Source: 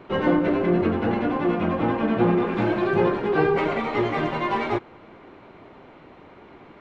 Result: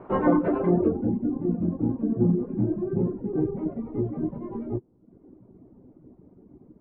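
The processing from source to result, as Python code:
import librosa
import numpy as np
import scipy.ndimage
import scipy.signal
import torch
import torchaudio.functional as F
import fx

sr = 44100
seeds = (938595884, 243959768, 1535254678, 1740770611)

y = fx.doubler(x, sr, ms=16.0, db=-7.5)
y = fx.filter_sweep_lowpass(y, sr, from_hz=1000.0, to_hz=260.0, start_s=0.63, end_s=1.18, q=1.2)
y = fx.dereverb_blind(y, sr, rt60_s=0.82)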